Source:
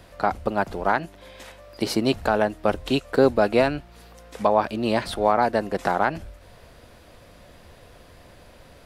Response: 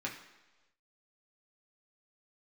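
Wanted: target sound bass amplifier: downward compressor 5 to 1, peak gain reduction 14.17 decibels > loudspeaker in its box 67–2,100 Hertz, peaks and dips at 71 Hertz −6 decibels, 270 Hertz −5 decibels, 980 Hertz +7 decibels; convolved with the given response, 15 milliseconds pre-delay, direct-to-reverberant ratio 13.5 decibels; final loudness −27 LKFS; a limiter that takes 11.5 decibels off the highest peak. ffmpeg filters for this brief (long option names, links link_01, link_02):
-filter_complex "[0:a]alimiter=limit=-18.5dB:level=0:latency=1,asplit=2[link_01][link_02];[1:a]atrim=start_sample=2205,adelay=15[link_03];[link_02][link_03]afir=irnorm=-1:irlink=0,volume=-16dB[link_04];[link_01][link_04]amix=inputs=2:normalize=0,acompressor=threshold=-37dB:ratio=5,highpass=frequency=67:width=0.5412,highpass=frequency=67:width=1.3066,equalizer=frequency=71:width_type=q:width=4:gain=-6,equalizer=frequency=270:width_type=q:width=4:gain=-5,equalizer=frequency=980:width_type=q:width=4:gain=7,lowpass=frequency=2100:width=0.5412,lowpass=frequency=2100:width=1.3066,volume=16dB"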